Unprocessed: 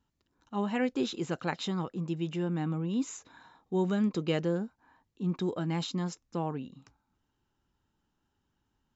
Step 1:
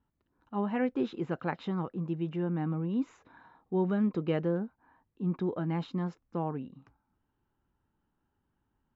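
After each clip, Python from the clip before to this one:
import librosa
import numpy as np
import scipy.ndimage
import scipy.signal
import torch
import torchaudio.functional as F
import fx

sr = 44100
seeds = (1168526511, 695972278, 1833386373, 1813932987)

y = scipy.signal.sosfilt(scipy.signal.butter(2, 1900.0, 'lowpass', fs=sr, output='sos'), x)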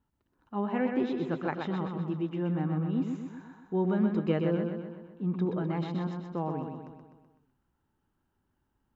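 y = fx.echo_feedback(x, sr, ms=126, feedback_pct=54, wet_db=-5)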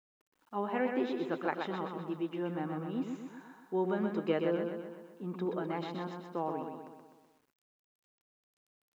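y = scipy.signal.sosfilt(scipy.signal.butter(2, 320.0, 'highpass', fs=sr, output='sos'), x)
y = fx.quant_dither(y, sr, seeds[0], bits=12, dither='none')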